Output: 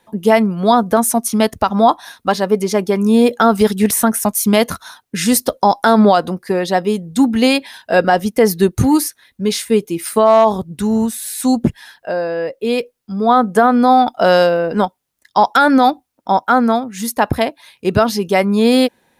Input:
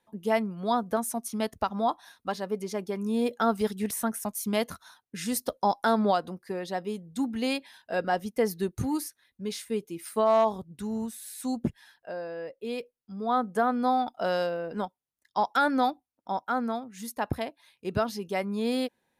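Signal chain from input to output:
boost into a limiter +17.5 dB
level −1 dB

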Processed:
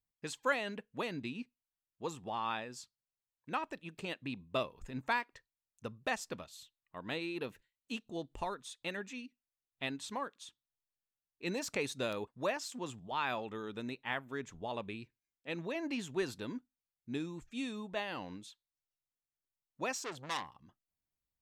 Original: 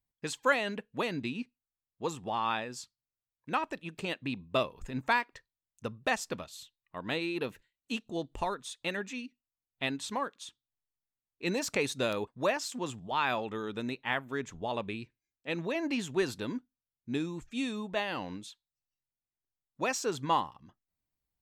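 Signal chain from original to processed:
0:20.00–0:20.55: saturating transformer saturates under 3,700 Hz
level −5.5 dB

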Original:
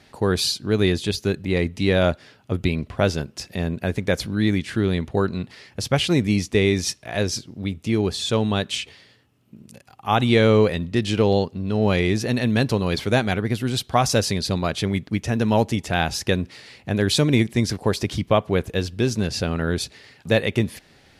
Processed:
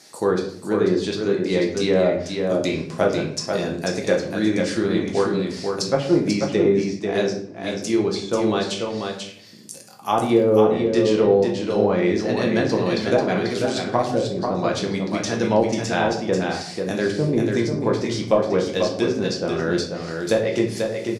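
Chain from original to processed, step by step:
high-pass filter 240 Hz 12 dB per octave
high shelf with overshoot 4,200 Hz +11.5 dB, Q 1.5
treble cut that deepens with the level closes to 580 Hz, closed at −14 dBFS
on a send: single-tap delay 490 ms −5 dB
on the sum: rectangular room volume 88 cubic metres, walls mixed, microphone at 0.72 metres

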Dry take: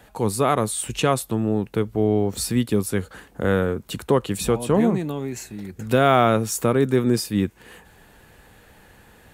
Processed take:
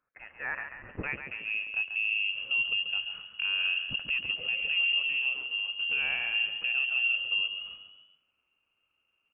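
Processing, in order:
mu-law and A-law mismatch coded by A
parametric band 970 Hz −14.5 dB 1.8 octaves
mains-hum notches 60/120/180 Hz
in parallel at −2 dB: downward compressor, threshold −31 dBFS, peak gain reduction 13.5 dB
on the sum: noise gate −47 dBFS, range −16 dB
high-pass filter sweep 1,300 Hz → 220 Hz, 0:00.71–0:02.33
voice inversion scrambler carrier 3,000 Hz
brickwall limiter −16.5 dBFS, peak gain reduction 11.5 dB
on a send: echo with shifted repeats 138 ms, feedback 47%, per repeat +32 Hz, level −8 dB
on the sum: level −5.5 dB

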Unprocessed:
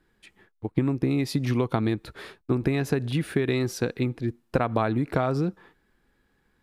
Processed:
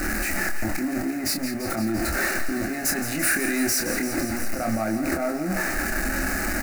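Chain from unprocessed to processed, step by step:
converter with a step at zero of −29 dBFS
0:02.84–0:03.79: tilt shelving filter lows −5 dB
compressor whose output falls as the input rises −28 dBFS, ratio −1
leveller curve on the samples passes 2
phaser with its sweep stopped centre 670 Hz, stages 8
double-tracking delay 27 ms −5 dB
feedback echo with a high-pass in the loop 170 ms, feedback 79%, high-pass 420 Hz, level −10.5 dB
level −1 dB

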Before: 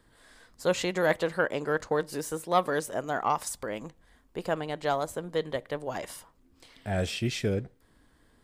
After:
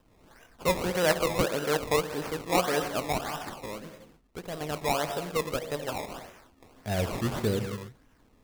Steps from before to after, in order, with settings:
0:03.18–0:04.61: tube saturation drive 32 dB, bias 0.7
reverb whose tail is shaped and stops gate 320 ms flat, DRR 6.5 dB
sample-and-hold swept by an LFO 20×, swing 100% 1.7 Hz

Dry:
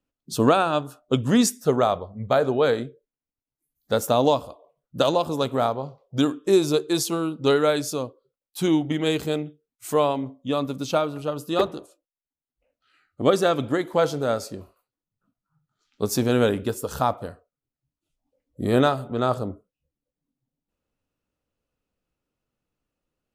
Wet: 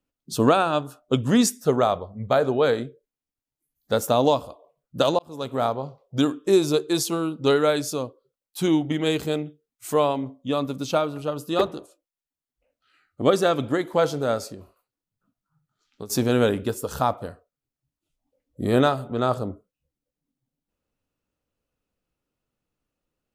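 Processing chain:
0:05.19–0:05.69: fade in
0:14.49–0:16.10: downward compressor 6 to 1, threshold −35 dBFS, peak gain reduction 15 dB

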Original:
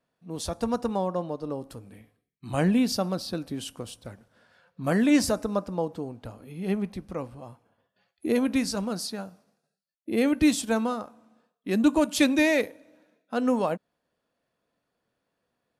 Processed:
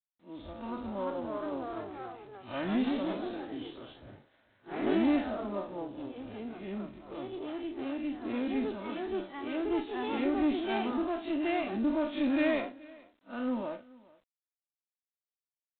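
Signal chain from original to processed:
spectrum smeared in time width 100 ms
0:01.49–0:03.84: parametric band 1,700 Hz → 11,000 Hz +7.5 dB 1.9 octaves
comb filter 3.3 ms, depth 73%
dynamic equaliser 160 Hz, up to −4 dB, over −40 dBFS, Q 2.1
two-band tremolo in antiphase 2.2 Hz, depth 50%, crossover 410 Hz
tube saturation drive 18 dB, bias 0.4
delay with pitch and tempo change per echo 427 ms, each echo +2 semitones, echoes 3
single-tap delay 428 ms −23 dB
level −4 dB
G.726 24 kbit/s 8,000 Hz

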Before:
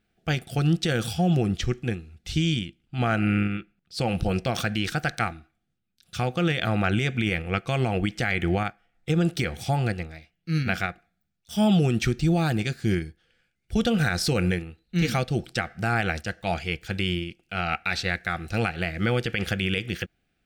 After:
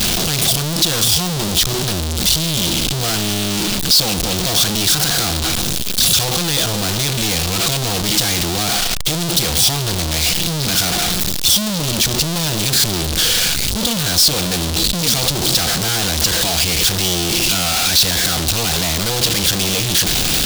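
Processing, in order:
sign of each sample alone
high shelf with overshoot 2,800 Hz +9 dB, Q 1.5
level +5.5 dB

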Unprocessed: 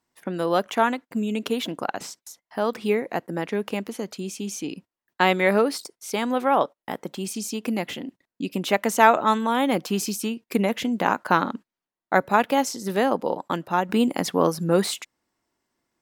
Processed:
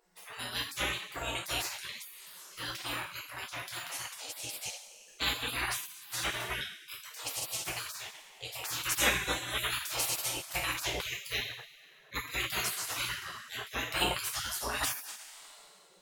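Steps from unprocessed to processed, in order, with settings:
mains hum 60 Hz, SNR 26 dB
coupled-rooms reverb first 0.5 s, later 2.2 s, from −18 dB, DRR −4.5 dB
gate on every frequency bin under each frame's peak −25 dB weak

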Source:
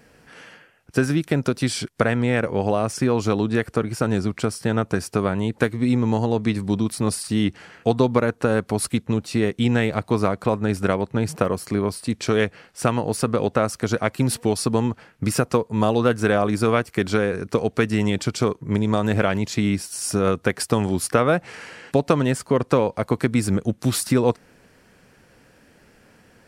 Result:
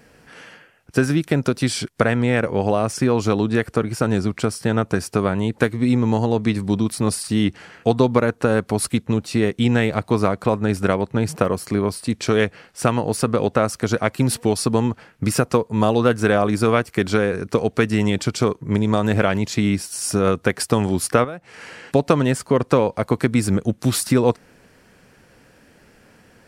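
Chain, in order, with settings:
0:21.24–0:21.80: downward compressor 5 to 1, threshold −33 dBFS, peak gain reduction 16.5 dB
level +2 dB

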